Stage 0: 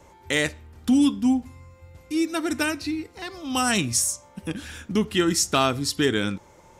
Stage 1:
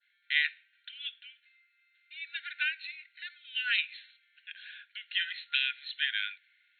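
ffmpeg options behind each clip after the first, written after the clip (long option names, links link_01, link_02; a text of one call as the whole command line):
ffmpeg -i in.wav -af "adynamicequalizer=threshold=0.01:dfrequency=2500:dqfactor=1.2:tfrequency=2500:tqfactor=1.2:attack=5:release=100:ratio=0.375:range=4:mode=boostabove:tftype=bell,afftfilt=real='re*between(b*sr/4096,1400,4300)':imag='im*between(b*sr/4096,1400,4300)':win_size=4096:overlap=0.75,volume=-7.5dB" out.wav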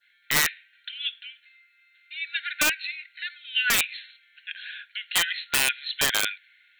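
ffmpeg -i in.wav -af "aeval=exprs='(mod(12.6*val(0)+1,2)-1)/12.6':channel_layout=same,volume=9dB" out.wav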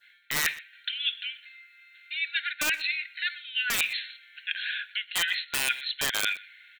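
ffmpeg -i in.wav -filter_complex "[0:a]areverse,acompressor=threshold=-31dB:ratio=8,areverse,asplit=2[link_01][link_02];[link_02]adelay=122.4,volume=-21dB,highshelf=frequency=4000:gain=-2.76[link_03];[link_01][link_03]amix=inputs=2:normalize=0,volume=6.5dB" out.wav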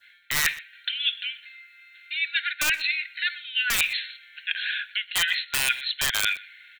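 ffmpeg -i in.wav -filter_complex "[0:a]acrossover=split=120|830|4900[link_01][link_02][link_03][link_04];[link_01]acontrast=50[link_05];[link_02]alimiter=level_in=15dB:limit=-24dB:level=0:latency=1:release=238,volume=-15dB[link_06];[link_05][link_06][link_03][link_04]amix=inputs=4:normalize=0,volume=3.5dB" out.wav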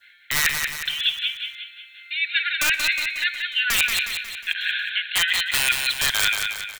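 ffmpeg -i in.wav -af "aecho=1:1:181|362|543|724|905|1086:0.562|0.276|0.135|0.0662|0.0324|0.0159,volume=2.5dB" out.wav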